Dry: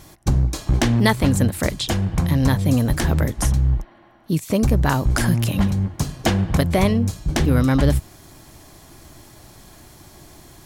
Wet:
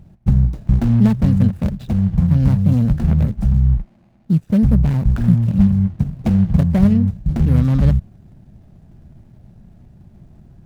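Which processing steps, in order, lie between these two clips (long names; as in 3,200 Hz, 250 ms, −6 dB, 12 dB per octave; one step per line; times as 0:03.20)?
running median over 41 samples
low shelf with overshoot 250 Hz +6 dB, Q 3
level −3 dB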